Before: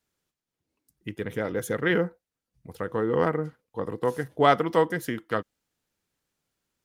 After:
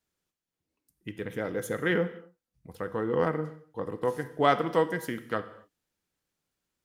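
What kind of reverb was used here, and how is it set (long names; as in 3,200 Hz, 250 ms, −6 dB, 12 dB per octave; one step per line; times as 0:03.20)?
reverb whose tail is shaped and stops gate 290 ms falling, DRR 10.5 dB
level −3.5 dB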